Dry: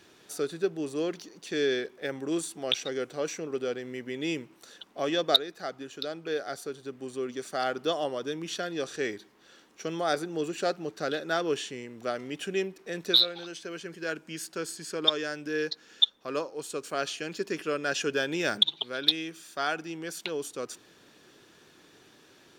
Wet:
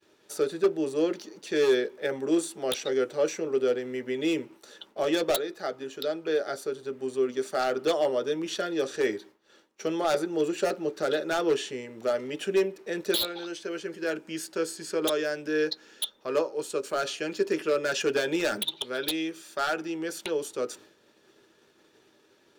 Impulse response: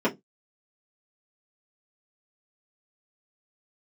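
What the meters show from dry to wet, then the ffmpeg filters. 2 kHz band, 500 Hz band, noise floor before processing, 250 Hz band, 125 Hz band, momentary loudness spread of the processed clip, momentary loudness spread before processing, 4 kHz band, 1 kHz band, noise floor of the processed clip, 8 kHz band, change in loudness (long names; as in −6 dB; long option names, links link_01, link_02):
+0.5 dB, +5.0 dB, −58 dBFS, +4.0 dB, −1.5 dB, 8 LU, 13 LU, −6.5 dB, +1.0 dB, −63 dBFS, +2.0 dB, +1.5 dB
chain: -filter_complex "[0:a]aeval=exprs='0.0841*(abs(mod(val(0)/0.0841+3,4)-2)-1)':channel_layout=same,agate=range=-33dB:threshold=-50dB:ratio=3:detection=peak,asplit=2[link_01][link_02];[1:a]atrim=start_sample=2205,asetrate=61740,aresample=44100[link_03];[link_02][link_03]afir=irnorm=-1:irlink=0,volume=-16dB[link_04];[link_01][link_04]amix=inputs=2:normalize=0"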